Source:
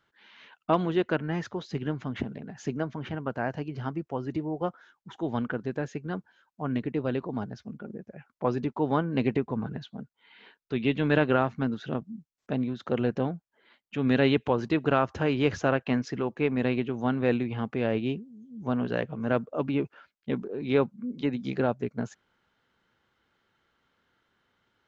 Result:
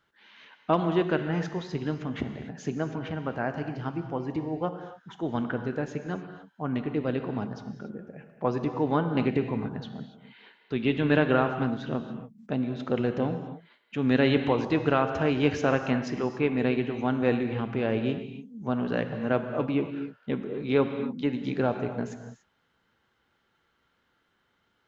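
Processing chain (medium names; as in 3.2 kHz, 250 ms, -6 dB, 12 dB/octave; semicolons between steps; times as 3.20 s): gated-style reverb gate 310 ms flat, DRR 7 dB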